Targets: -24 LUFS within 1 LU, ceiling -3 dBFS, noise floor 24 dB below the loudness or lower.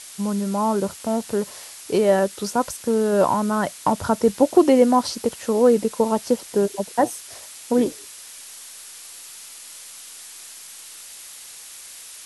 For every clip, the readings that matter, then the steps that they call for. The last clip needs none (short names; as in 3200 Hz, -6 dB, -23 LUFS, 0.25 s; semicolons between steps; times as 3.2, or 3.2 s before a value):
noise floor -41 dBFS; noise floor target -45 dBFS; loudness -21.0 LUFS; peak -3.0 dBFS; loudness target -24.0 LUFS
-> denoiser 6 dB, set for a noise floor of -41 dBFS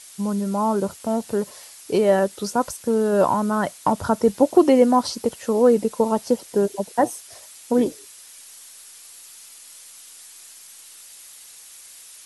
noise floor -45 dBFS; loudness -21.0 LUFS; peak -3.0 dBFS; loudness target -24.0 LUFS
-> gain -3 dB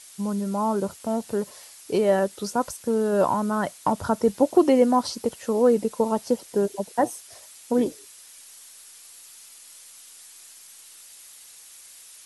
loudness -24.0 LUFS; peak -6.0 dBFS; noise floor -48 dBFS